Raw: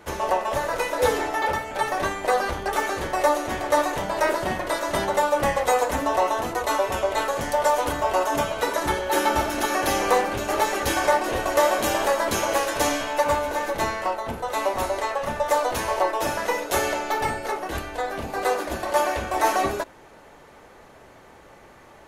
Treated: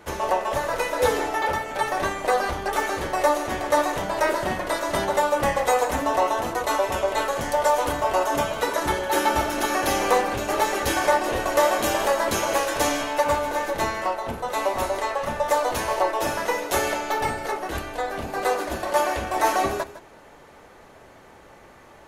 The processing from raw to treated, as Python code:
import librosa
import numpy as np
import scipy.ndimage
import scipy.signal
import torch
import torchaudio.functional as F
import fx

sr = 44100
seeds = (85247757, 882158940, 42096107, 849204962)

y = x + 10.0 ** (-14.5 / 20.0) * np.pad(x, (int(157 * sr / 1000.0), 0))[:len(x)]